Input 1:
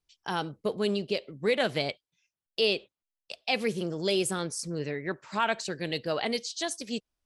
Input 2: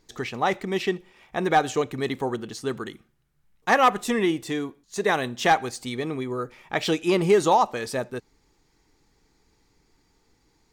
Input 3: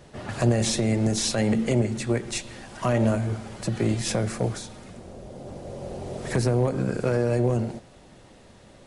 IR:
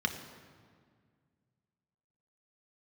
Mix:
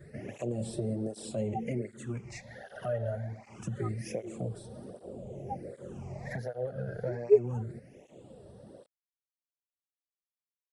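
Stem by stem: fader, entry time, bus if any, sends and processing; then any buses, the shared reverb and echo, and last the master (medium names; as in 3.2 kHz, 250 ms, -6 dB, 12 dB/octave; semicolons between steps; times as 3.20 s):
mute
-8.5 dB, 0.00 s, no send, spectral contrast expander 4:1
-1.5 dB, 0.00 s, no send, phase shifter stages 8, 0.26 Hz, lowest notch 300–2200 Hz; compression 2:1, threshold -39 dBFS, peak gain reduction 13 dB; cancelling through-zero flanger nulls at 1.3 Hz, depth 4.3 ms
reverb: none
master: graphic EQ 125/500/1000/2000/4000 Hz +3/+9/-4/+5/-10 dB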